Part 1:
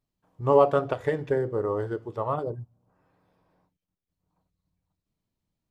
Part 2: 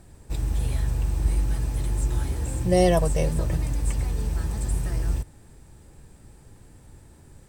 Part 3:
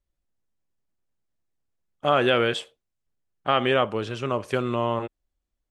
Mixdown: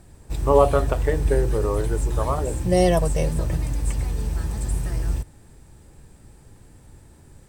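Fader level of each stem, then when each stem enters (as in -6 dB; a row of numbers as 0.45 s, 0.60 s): +2.5 dB, +1.0 dB, mute; 0.00 s, 0.00 s, mute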